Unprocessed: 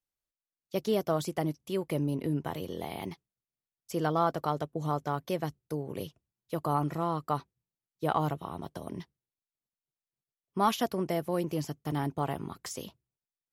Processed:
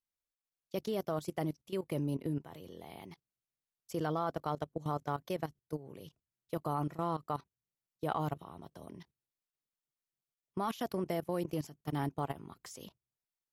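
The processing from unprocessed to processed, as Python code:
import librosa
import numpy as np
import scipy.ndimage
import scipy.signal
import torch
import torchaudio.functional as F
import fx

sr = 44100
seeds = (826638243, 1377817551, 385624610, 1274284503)

y = fx.level_steps(x, sr, step_db=16)
y = y * librosa.db_to_amplitude(-1.5)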